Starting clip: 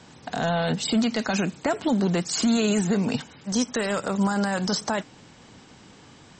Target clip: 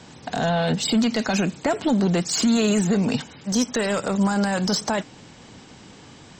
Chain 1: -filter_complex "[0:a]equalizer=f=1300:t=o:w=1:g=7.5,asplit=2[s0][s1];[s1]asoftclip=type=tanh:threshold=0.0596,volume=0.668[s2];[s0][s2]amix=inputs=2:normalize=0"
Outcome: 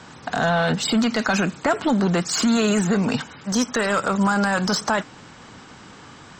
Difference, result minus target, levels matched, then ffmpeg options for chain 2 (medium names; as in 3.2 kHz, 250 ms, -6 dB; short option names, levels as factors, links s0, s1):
1 kHz band +3.0 dB
-filter_complex "[0:a]equalizer=f=1300:t=o:w=1:g=-2,asplit=2[s0][s1];[s1]asoftclip=type=tanh:threshold=0.0596,volume=0.668[s2];[s0][s2]amix=inputs=2:normalize=0"